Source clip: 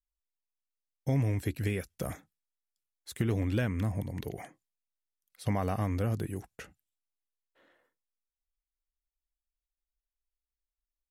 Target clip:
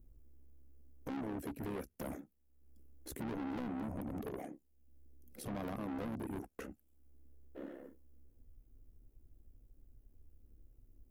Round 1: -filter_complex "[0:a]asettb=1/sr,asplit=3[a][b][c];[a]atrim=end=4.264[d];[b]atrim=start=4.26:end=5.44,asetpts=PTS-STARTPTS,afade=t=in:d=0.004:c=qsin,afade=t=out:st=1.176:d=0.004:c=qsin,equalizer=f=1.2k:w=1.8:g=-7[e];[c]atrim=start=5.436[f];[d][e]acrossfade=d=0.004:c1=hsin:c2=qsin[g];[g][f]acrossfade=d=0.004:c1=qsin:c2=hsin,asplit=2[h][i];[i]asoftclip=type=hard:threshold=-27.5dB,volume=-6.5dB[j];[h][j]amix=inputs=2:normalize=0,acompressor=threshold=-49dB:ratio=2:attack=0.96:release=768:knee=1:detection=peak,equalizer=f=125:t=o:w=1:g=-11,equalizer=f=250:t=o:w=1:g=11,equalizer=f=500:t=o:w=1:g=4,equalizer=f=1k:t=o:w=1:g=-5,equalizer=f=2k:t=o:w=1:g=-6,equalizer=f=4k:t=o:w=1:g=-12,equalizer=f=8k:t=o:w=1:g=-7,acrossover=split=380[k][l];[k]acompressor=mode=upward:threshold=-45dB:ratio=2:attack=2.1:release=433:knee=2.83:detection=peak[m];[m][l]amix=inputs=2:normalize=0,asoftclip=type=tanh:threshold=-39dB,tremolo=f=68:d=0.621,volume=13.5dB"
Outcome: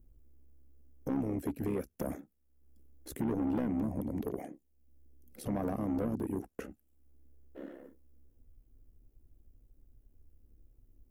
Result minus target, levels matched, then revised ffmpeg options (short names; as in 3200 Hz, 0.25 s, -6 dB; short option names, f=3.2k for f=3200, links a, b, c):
hard clip: distortion +35 dB; soft clip: distortion -7 dB
-filter_complex "[0:a]asettb=1/sr,asplit=3[a][b][c];[a]atrim=end=4.264[d];[b]atrim=start=4.26:end=5.44,asetpts=PTS-STARTPTS,afade=t=in:d=0.004:c=qsin,afade=t=out:st=1.176:d=0.004:c=qsin,equalizer=f=1.2k:w=1.8:g=-7[e];[c]atrim=start=5.436[f];[d][e]acrossfade=d=0.004:c1=hsin:c2=qsin[g];[g][f]acrossfade=d=0.004:c1=qsin:c2=hsin,asplit=2[h][i];[i]asoftclip=type=hard:threshold=-18dB,volume=-6.5dB[j];[h][j]amix=inputs=2:normalize=0,acompressor=threshold=-49dB:ratio=2:attack=0.96:release=768:knee=1:detection=peak,equalizer=f=125:t=o:w=1:g=-11,equalizer=f=250:t=o:w=1:g=11,equalizer=f=500:t=o:w=1:g=4,equalizer=f=1k:t=o:w=1:g=-5,equalizer=f=2k:t=o:w=1:g=-6,equalizer=f=4k:t=o:w=1:g=-12,equalizer=f=8k:t=o:w=1:g=-7,acrossover=split=380[k][l];[k]acompressor=mode=upward:threshold=-45dB:ratio=2:attack=2.1:release=433:knee=2.83:detection=peak[m];[m][l]amix=inputs=2:normalize=0,asoftclip=type=tanh:threshold=-49.5dB,tremolo=f=68:d=0.621,volume=13.5dB"